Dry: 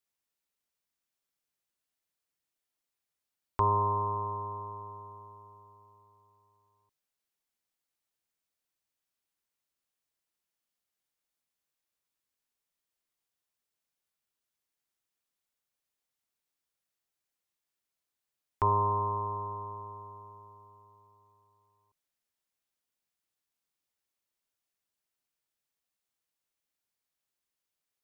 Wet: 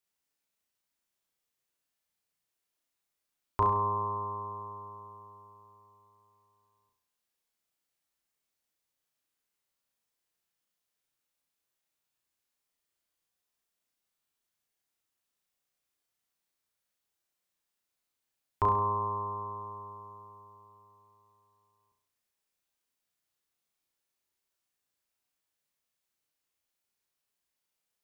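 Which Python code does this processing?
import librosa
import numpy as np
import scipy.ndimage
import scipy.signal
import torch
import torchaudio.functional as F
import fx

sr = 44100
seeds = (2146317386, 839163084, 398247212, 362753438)

y = fx.room_flutter(x, sr, wall_m=5.8, rt60_s=0.55)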